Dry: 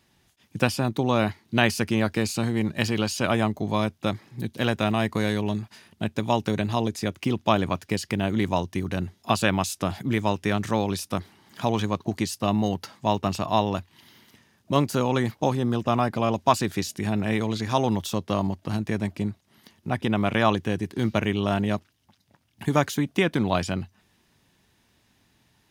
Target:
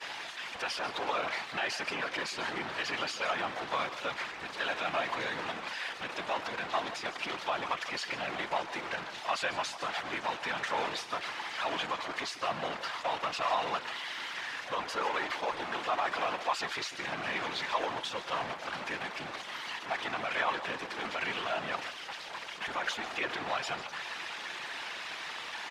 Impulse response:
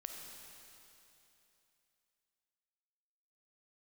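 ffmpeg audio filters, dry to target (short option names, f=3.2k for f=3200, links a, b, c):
-filter_complex "[0:a]aeval=exprs='val(0)+0.5*0.0944*sgn(val(0))':c=same,lowpass=3.1k,agate=range=-33dB:threshold=-23dB:ratio=3:detection=peak,aecho=1:1:5.7:0.48,asplit=2[a][b];[b]acompressor=threshold=-31dB:ratio=6,volume=-1dB[c];[a][c]amix=inputs=2:normalize=0,alimiter=limit=-10.5dB:level=0:latency=1:release=37,highpass=840,asplit=2[d][e];[e]aecho=0:1:147:0.224[f];[d][f]amix=inputs=2:normalize=0,afftfilt=real='hypot(re,im)*cos(2*PI*random(0))':imag='hypot(re,im)*sin(2*PI*random(1))':win_size=512:overlap=0.75"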